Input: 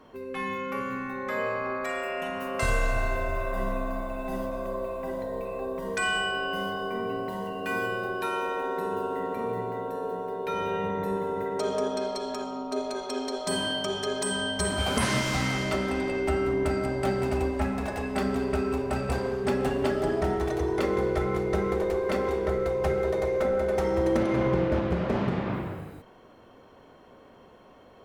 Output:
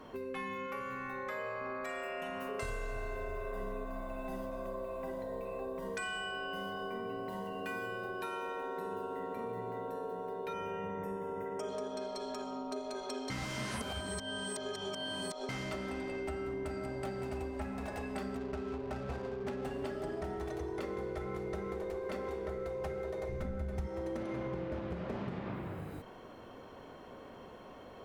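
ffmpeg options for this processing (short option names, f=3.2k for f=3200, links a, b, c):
-filter_complex "[0:a]asettb=1/sr,asplit=3[a][b][c];[a]atrim=end=0.664[d];[b]atrim=start=0.66:end=1.61,asetpts=PTS-STARTPTS,afade=t=in:d=0.004:c=qsin,afade=t=out:st=0.946:d=0.004:c=qsin,equalizer=f=230:t=o:w=0.77:g=-9[e];[c]atrim=start=1.606[f];[d][e]acrossfade=d=0.004:c1=hsin:c2=qsin[g];[g][f]acrossfade=d=0.004:c1=qsin:c2=hsin,asettb=1/sr,asplit=3[h][i][j];[h]atrim=end=2.494[k];[i]atrim=start=2.49:end=3.85,asetpts=PTS-STARTPTS,afade=t=in:d=0.004:c=qsin,afade=t=out:st=1.356:d=0.004:c=qsin,aeval=exprs='val(0)+0.0316*sin(2*PI*420*n/s)':c=same[l];[j]atrim=start=3.846[m];[k][l]acrossfade=d=0.004:c1=hsin:c2=qsin[n];[n][m]acrossfade=d=0.004:c1=qsin:c2=hsin,asettb=1/sr,asplit=3[o][p][q];[o]atrim=end=10.534[r];[p]atrim=start=10.53:end=11.69,asetpts=PTS-STARTPTS,afade=t=in:d=0.004:c=qsin,afade=t=out:st=1.156:d=0.004:c=qsin,asuperstop=centerf=4100:order=8:qfactor=2.9[s];[q]atrim=start=11.686[t];[r][s]acrossfade=d=0.004:c1=hsin:c2=qsin[u];[u][t]acrossfade=d=0.004:c1=qsin:c2=hsin,asettb=1/sr,asplit=3[v][w][x];[v]atrim=end=18.374[y];[w]atrim=start=18.37:end=19.65,asetpts=PTS-STARTPTS,afade=t=in:d=0.004:c=qsin,afade=t=out:st=1.276:d=0.004:c=qsin,adynamicsmooth=sensitivity=7.5:basefreq=520[z];[x]atrim=start=19.646[aa];[y][z]acrossfade=d=0.004:c1=hsin:c2=qsin[ab];[ab][aa]acrossfade=d=0.004:c1=qsin:c2=hsin,asplit=3[ac][ad][ae];[ac]afade=t=out:st=23.28:d=0.02[af];[ad]asubboost=boost=8.5:cutoff=160,afade=t=in:st=23.28:d=0.02,afade=t=out:st=23.86:d=0.02[ag];[ae]afade=t=in:st=23.86:d=0.02[ah];[af][ag][ah]amix=inputs=3:normalize=0,asplit=3[ai][aj][ak];[ai]atrim=end=13.302[al];[aj]atrim=start=13.298:end=15.492,asetpts=PTS-STARTPTS,areverse[am];[ak]atrim=start=15.488[an];[al][am]acrossfade=d=0.004:c1=hsin:c2=hsin[ao];[ao][an]acrossfade=d=0.004:c1=hsin:c2=hsin,acompressor=threshold=-41dB:ratio=4,volume=2dB"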